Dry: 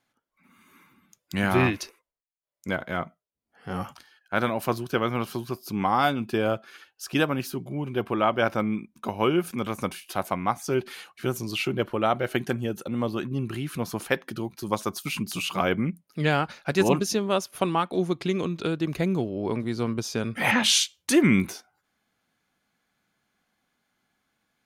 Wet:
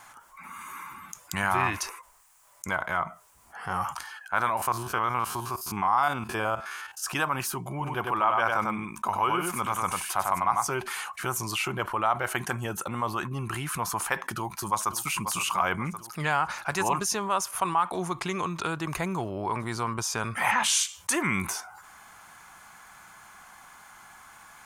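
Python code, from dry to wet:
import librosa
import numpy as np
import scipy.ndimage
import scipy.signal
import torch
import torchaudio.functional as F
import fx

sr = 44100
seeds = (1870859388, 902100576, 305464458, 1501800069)

y = fx.spec_steps(x, sr, hold_ms=50, at=(4.57, 7.04))
y = fx.echo_single(y, sr, ms=97, db=-5.0, at=(7.7, 10.68))
y = fx.echo_throw(y, sr, start_s=14.32, length_s=0.66, ms=540, feedback_pct=40, wet_db=-15.0)
y = fx.graphic_eq(y, sr, hz=(125, 250, 500, 1000, 4000, 8000), db=(-4, -11, -8, 12, -7, 8))
y = fx.env_flatten(y, sr, amount_pct=50)
y = y * 10.0 ** (-7.0 / 20.0)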